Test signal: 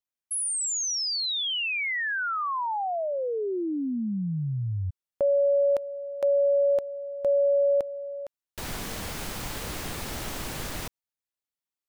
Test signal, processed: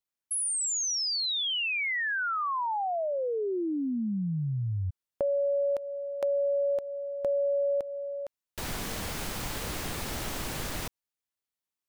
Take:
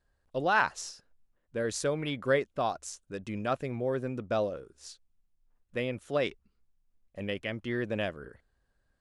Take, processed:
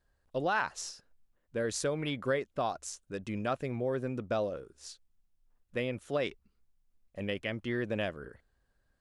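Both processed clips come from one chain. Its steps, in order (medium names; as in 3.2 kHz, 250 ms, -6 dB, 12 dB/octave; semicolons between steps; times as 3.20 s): compression 2.5:1, threshold -28 dBFS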